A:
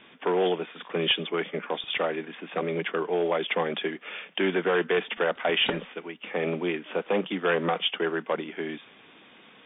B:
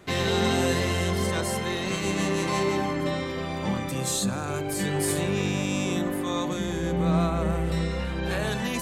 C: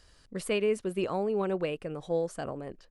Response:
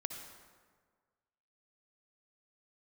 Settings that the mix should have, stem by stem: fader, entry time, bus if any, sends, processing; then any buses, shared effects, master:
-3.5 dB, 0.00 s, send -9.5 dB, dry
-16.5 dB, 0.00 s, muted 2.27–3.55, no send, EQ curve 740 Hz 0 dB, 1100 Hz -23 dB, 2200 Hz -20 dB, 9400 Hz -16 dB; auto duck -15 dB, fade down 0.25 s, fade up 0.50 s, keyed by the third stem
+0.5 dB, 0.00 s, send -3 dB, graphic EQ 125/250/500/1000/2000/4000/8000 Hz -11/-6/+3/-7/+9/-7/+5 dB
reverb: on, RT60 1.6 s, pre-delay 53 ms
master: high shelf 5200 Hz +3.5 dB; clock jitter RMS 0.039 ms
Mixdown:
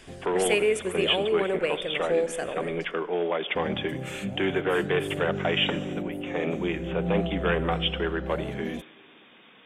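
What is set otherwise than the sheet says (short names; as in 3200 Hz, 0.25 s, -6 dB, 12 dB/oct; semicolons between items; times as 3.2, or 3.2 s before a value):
stem B -16.5 dB -> -5.0 dB; master: missing clock jitter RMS 0.039 ms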